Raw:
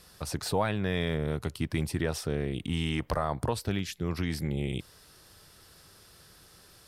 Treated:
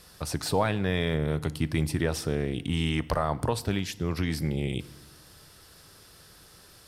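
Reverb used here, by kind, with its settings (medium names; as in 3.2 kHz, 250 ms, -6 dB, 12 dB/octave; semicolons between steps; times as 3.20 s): FDN reverb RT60 1.1 s, low-frequency decay 1.45×, high-frequency decay 0.9×, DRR 16.5 dB; trim +2.5 dB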